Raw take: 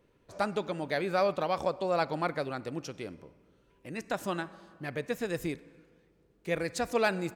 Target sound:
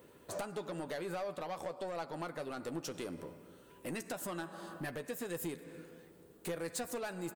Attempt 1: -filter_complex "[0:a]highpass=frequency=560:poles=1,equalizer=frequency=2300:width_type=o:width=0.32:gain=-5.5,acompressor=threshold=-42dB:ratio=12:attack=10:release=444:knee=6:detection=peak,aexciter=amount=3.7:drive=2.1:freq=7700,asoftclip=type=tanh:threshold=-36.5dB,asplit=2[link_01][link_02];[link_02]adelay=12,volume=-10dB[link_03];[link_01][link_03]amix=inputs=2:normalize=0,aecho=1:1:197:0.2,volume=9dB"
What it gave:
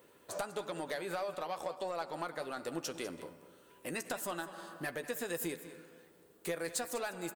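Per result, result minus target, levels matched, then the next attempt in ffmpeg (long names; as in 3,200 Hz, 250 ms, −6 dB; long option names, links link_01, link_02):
echo-to-direct +11.5 dB; soft clipping: distortion −6 dB; 250 Hz band −3.0 dB
-filter_complex "[0:a]highpass=frequency=560:poles=1,equalizer=frequency=2300:width_type=o:width=0.32:gain=-5.5,acompressor=threshold=-42dB:ratio=12:attack=10:release=444:knee=6:detection=peak,aexciter=amount=3.7:drive=2.1:freq=7700,asoftclip=type=tanh:threshold=-36.5dB,asplit=2[link_01][link_02];[link_02]adelay=12,volume=-10dB[link_03];[link_01][link_03]amix=inputs=2:normalize=0,aecho=1:1:197:0.0531,volume=9dB"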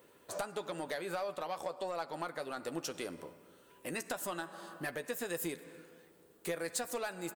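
soft clipping: distortion −6 dB; 250 Hz band −3.0 dB
-filter_complex "[0:a]highpass=frequency=560:poles=1,equalizer=frequency=2300:width_type=o:width=0.32:gain=-5.5,acompressor=threshold=-42dB:ratio=12:attack=10:release=444:knee=6:detection=peak,aexciter=amount=3.7:drive=2.1:freq=7700,asoftclip=type=tanh:threshold=-43dB,asplit=2[link_01][link_02];[link_02]adelay=12,volume=-10dB[link_03];[link_01][link_03]amix=inputs=2:normalize=0,aecho=1:1:197:0.0531,volume=9dB"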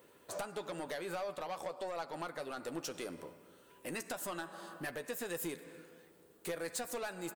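250 Hz band −2.5 dB
-filter_complex "[0:a]highpass=frequency=180:poles=1,equalizer=frequency=2300:width_type=o:width=0.32:gain=-5.5,acompressor=threshold=-42dB:ratio=12:attack=10:release=444:knee=6:detection=peak,aexciter=amount=3.7:drive=2.1:freq=7700,asoftclip=type=tanh:threshold=-43dB,asplit=2[link_01][link_02];[link_02]adelay=12,volume=-10dB[link_03];[link_01][link_03]amix=inputs=2:normalize=0,aecho=1:1:197:0.0531,volume=9dB"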